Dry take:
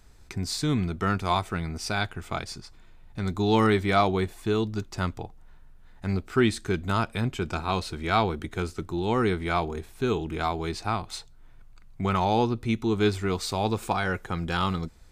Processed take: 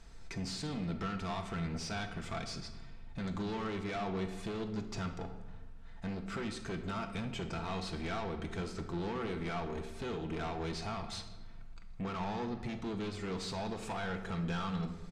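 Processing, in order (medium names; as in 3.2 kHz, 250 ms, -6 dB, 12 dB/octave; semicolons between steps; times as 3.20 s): treble shelf 4.5 kHz +7 dB; comb 4.4 ms, depth 36%; compression 5:1, threshold -29 dBFS, peak gain reduction 12.5 dB; saturation -35 dBFS, distortion -8 dB; distance through air 91 m; on a send: reverberation RT60 1.2 s, pre-delay 6 ms, DRR 6 dB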